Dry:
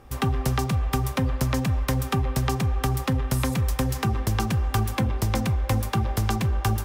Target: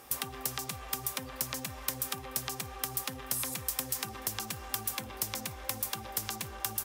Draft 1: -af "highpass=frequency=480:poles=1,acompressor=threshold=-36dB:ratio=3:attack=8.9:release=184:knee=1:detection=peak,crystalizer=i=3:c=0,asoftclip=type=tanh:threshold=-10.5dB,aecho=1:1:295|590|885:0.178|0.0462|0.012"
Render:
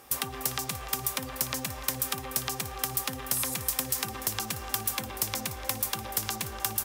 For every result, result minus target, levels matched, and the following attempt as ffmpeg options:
echo-to-direct +12 dB; downward compressor: peak gain reduction −4.5 dB
-af "highpass=frequency=480:poles=1,acompressor=threshold=-36dB:ratio=3:attack=8.9:release=184:knee=1:detection=peak,crystalizer=i=3:c=0,asoftclip=type=tanh:threshold=-10.5dB,aecho=1:1:295|590:0.0447|0.0116"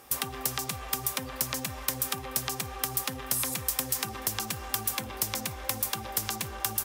downward compressor: peak gain reduction −4.5 dB
-af "highpass=frequency=480:poles=1,acompressor=threshold=-43dB:ratio=3:attack=8.9:release=184:knee=1:detection=peak,crystalizer=i=3:c=0,asoftclip=type=tanh:threshold=-10.5dB,aecho=1:1:295|590:0.0447|0.0116"

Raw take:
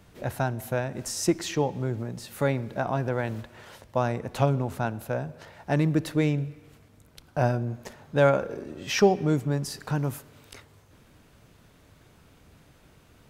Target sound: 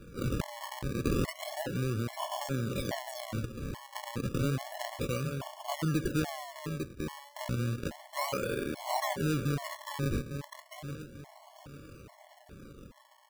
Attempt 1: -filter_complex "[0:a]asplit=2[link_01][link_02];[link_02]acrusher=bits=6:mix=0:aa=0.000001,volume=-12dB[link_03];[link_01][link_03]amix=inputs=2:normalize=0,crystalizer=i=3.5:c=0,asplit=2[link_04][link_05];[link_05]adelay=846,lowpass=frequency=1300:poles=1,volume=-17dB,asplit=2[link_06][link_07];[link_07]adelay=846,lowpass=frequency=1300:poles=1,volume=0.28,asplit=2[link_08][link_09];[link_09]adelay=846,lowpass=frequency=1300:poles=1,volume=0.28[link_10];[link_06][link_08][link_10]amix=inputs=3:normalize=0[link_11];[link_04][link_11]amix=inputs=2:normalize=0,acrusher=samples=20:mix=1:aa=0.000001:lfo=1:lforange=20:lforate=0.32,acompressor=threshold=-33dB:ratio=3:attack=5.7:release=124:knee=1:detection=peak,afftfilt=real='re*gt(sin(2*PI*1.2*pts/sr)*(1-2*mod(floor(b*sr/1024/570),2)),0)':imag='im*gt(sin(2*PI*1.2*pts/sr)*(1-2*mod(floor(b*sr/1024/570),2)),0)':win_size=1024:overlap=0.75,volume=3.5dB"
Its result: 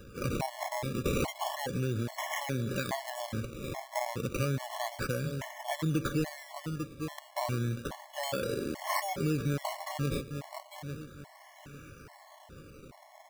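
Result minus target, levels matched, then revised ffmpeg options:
sample-and-hold swept by an LFO: distortion −6 dB
-filter_complex "[0:a]asplit=2[link_01][link_02];[link_02]acrusher=bits=6:mix=0:aa=0.000001,volume=-12dB[link_03];[link_01][link_03]amix=inputs=2:normalize=0,crystalizer=i=3.5:c=0,asplit=2[link_04][link_05];[link_05]adelay=846,lowpass=frequency=1300:poles=1,volume=-17dB,asplit=2[link_06][link_07];[link_07]adelay=846,lowpass=frequency=1300:poles=1,volume=0.28,asplit=2[link_08][link_09];[link_09]adelay=846,lowpass=frequency=1300:poles=1,volume=0.28[link_10];[link_06][link_08][link_10]amix=inputs=3:normalize=0[link_11];[link_04][link_11]amix=inputs=2:normalize=0,acrusher=samples=43:mix=1:aa=0.000001:lfo=1:lforange=43:lforate=0.32,acompressor=threshold=-33dB:ratio=3:attack=5.7:release=124:knee=1:detection=peak,afftfilt=real='re*gt(sin(2*PI*1.2*pts/sr)*(1-2*mod(floor(b*sr/1024/570),2)),0)':imag='im*gt(sin(2*PI*1.2*pts/sr)*(1-2*mod(floor(b*sr/1024/570),2)),0)':win_size=1024:overlap=0.75,volume=3.5dB"

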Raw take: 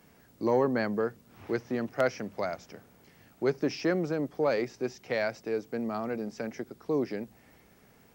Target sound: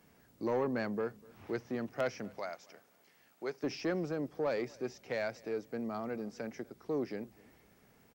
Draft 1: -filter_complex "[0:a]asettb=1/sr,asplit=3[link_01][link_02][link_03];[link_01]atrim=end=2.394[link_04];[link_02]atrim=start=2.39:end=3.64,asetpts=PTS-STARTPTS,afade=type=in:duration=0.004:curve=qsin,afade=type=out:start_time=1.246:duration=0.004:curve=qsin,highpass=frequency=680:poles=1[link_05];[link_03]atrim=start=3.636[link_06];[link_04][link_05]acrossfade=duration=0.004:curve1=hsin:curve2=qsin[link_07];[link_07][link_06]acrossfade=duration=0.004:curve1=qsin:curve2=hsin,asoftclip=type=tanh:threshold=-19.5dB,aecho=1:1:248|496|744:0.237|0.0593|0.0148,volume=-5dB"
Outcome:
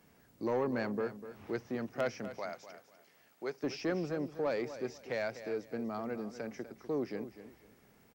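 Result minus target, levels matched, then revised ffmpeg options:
echo-to-direct +12 dB
-filter_complex "[0:a]asettb=1/sr,asplit=3[link_01][link_02][link_03];[link_01]atrim=end=2.394[link_04];[link_02]atrim=start=2.39:end=3.64,asetpts=PTS-STARTPTS,afade=type=in:duration=0.004:curve=qsin,afade=type=out:start_time=1.246:duration=0.004:curve=qsin,highpass=frequency=680:poles=1[link_05];[link_03]atrim=start=3.636[link_06];[link_04][link_05]acrossfade=duration=0.004:curve1=hsin:curve2=qsin[link_07];[link_07][link_06]acrossfade=duration=0.004:curve1=qsin:curve2=hsin,asoftclip=type=tanh:threshold=-19.5dB,aecho=1:1:248|496:0.0596|0.0149,volume=-5dB"

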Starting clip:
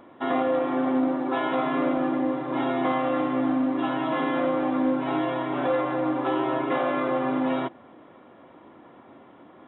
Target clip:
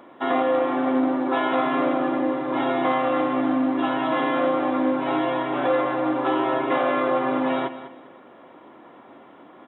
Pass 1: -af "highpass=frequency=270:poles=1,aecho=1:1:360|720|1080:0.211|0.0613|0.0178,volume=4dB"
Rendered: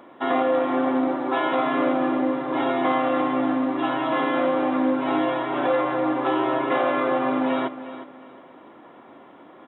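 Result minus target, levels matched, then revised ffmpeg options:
echo 160 ms late
-af "highpass=frequency=270:poles=1,aecho=1:1:200|400|600:0.211|0.0613|0.0178,volume=4dB"

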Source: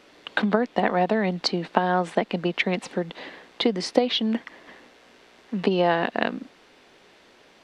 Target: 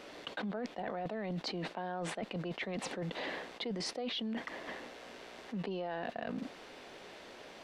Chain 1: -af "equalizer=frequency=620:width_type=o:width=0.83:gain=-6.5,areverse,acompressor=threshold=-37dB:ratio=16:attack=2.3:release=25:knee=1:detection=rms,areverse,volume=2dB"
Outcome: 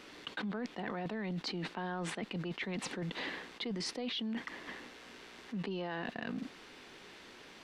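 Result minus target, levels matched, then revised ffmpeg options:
500 Hz band −3.0 dB
-af "equalizer=frequency=620:width_type=o:width=0.83:gain=4,areverse,acompressor=threshold=-37dB:ratio=16:attack=2.3:release=25:knee=1:detection=rms,areverse,volume=2dB"

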